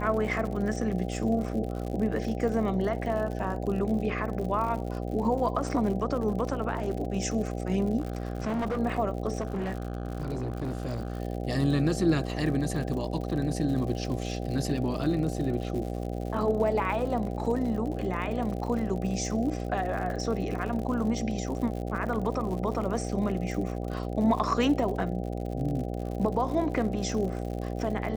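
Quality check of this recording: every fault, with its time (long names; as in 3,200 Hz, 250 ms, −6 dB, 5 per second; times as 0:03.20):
mains buzz 60 Hz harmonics 13 −33 dBFS
surface crackle 84 per second −35 dBFS
0:08.00–0:08.79: clipping −26 dBFS
0:09.40–0:11.20: clipping −27.5 dBFS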